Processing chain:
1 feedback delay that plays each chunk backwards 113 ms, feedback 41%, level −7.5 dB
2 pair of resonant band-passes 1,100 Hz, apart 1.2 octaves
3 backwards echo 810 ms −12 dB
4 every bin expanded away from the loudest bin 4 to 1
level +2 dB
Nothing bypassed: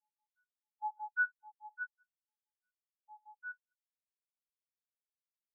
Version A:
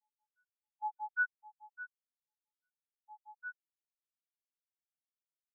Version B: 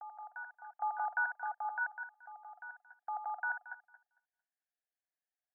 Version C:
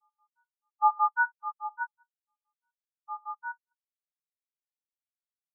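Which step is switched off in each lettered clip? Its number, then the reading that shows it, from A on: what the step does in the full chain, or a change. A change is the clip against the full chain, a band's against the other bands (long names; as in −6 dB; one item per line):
1, change in momentary loudness spread +3 LU
4, change in momentary loudness spread −5 LU
2, change in momentary loudness spread −4 LU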